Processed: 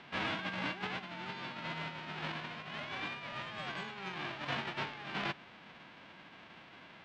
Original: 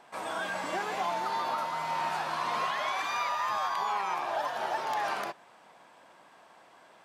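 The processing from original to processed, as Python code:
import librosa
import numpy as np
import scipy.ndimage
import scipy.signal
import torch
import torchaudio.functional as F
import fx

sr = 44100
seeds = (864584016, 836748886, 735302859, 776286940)

y = fx.envelope_flatten(x, sr, power=0.1)
y = scipy.signal.sosfilt(scipy.signal.butter(4, 3100.0, 'lowpass', fs=sr, output='sos'), y)
y = fx.over_compress(y, sr, threshold_db=-42.0, ratio=-0.5)
y = F.gain(torch.from_numpy(y), 2.5).numpy()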